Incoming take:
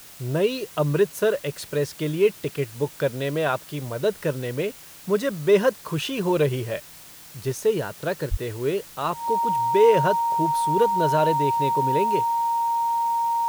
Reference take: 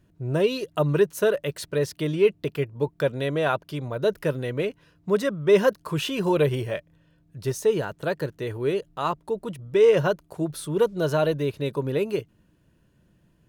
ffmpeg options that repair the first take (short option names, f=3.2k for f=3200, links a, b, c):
-filter_complex "[0:a]bandreject=f=930:w=30,asplit=3[a][b][c];[a]afade=t=out:st=8.3:d=0.02[d];[b]highpass=f=140:w=0.5412,highpass=f=140:w=1.3066,afade=t=in:st=8.3:d=0.02,afade=t=out:st=8.42:d=0.02[e];[c]afade=t=in:st=8.42:d=0.02[f];[d][e][f]amix=inputs=3:normalize=0,afwtdn=0.0056"